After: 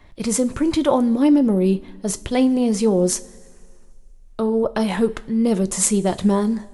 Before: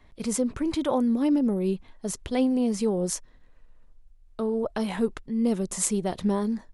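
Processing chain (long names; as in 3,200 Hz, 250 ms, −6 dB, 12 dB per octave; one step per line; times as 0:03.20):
coupled-rooms reverb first 0.23 s, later 2 s, from −19 dB, DRR 11 dB
level +7.5 dB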